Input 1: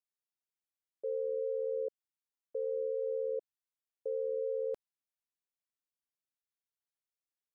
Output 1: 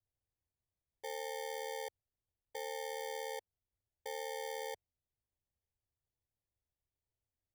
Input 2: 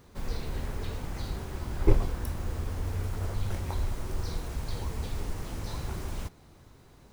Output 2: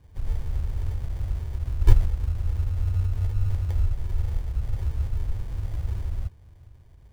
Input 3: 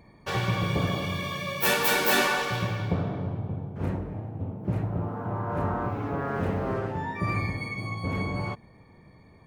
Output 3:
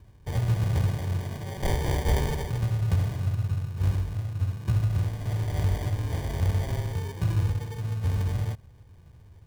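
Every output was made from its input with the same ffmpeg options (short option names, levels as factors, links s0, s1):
-af "acrusher=samples=33:mix=1:aa=0.000001,lowshelf=f=140:t=q:w=1.5:g=12.5,volume=0.473"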